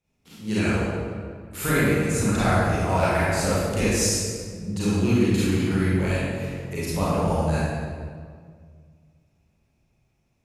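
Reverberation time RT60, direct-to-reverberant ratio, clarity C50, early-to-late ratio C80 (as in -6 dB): 1.9 s, -11.5 dB, -5.5 dB, -2.0 dB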